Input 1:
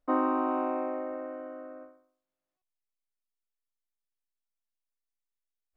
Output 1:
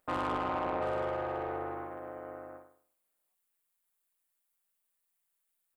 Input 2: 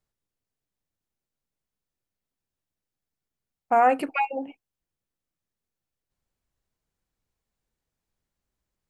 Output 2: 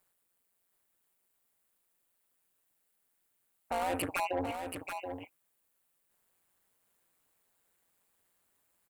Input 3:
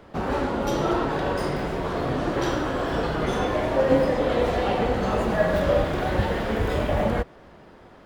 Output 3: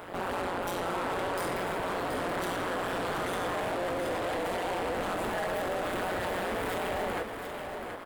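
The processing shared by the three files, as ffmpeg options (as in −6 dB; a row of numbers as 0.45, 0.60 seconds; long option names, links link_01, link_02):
-filter_complex "[0:a]asplit=2[link_01][link_02];[link_02]highpass=frequency=720:poles=1,volume=27dB,asoftclip=type=tanh:threshold=-7.5dB[link_03];[link_01][link_03]amix=inputs=2:normalize=0,lowpass=frequency=2900:poles=1,volume=-6dB,alimiter=limit=-18dB:level=0:latency=1:release=76,tremolo=f=180:d=0.947,aexciter=amount=5.8:drive=5.1:freq=7900,asplit=2[link_04][link_05];[link_05]aecho=0:1:728:0.447[link_06];[link_04][link_06]amix=inputs=2:normalize=0,volume=-6.5dB"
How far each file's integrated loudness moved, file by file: −4.0, −12.5, −8.0 LU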